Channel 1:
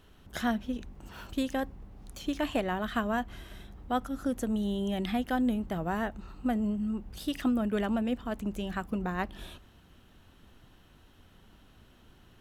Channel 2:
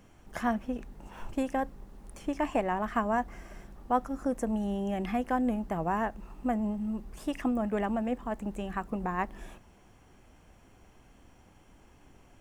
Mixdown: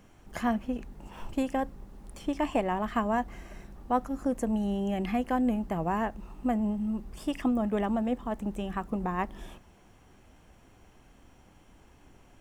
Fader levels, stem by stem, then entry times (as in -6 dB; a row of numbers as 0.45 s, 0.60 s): -12.0 dB, +0.5 dB; 0.00 s, 0.00 s